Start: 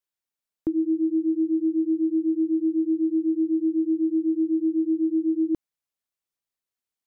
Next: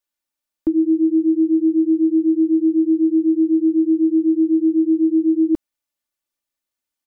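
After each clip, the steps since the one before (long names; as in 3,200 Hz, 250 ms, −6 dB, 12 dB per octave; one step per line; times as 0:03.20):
comb filter 3.4 ms
level +3 dB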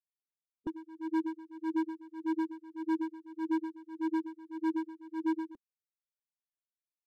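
spectral dynamics exaggerated over time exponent 3
hard clipping −21 dBFS, distortion −8 dB
tremolo with a sine in dB 1.7 Hz, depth 21 dB
level −5.5 dB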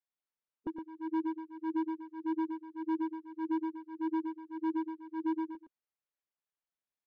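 mid-hump overdrive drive 8 dB, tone 1,300 Hz, clips at −26 dBFS
high-frequency loss of the air 68 metres
single-tap delay 116 ms −7 dB
level +1.5 dB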